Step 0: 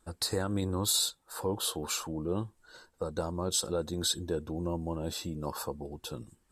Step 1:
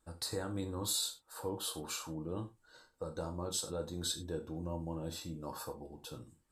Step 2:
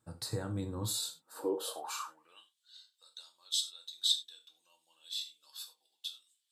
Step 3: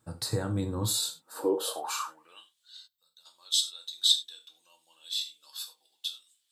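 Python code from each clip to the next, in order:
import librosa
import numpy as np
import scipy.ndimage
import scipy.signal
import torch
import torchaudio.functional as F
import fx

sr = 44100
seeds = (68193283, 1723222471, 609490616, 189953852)

y1 = fx.rev_gated(x, sr, seeds[0], gate_ms=120, shape='falling', drr_db=4.5)
y1 = y1 * 10.0 ** (-8.0 / 20.0)
y2 = fx.filter_sweep_highpass(y1, sr, from_hz=120.0, to_hz=3500.0, start_s=1.02, end_s=2.53, q=5.4)
y2 = y2 * 10.0 ** (-1.5 / 20.0)
y3 = fx.spec_box(y2, sr, start_s=2.87, length_s=0.39, low_hz=220.0, high_hz=12000.0, gain_db=-16)
y3 = y3 * 10.0 ** (6.5 / 20.0)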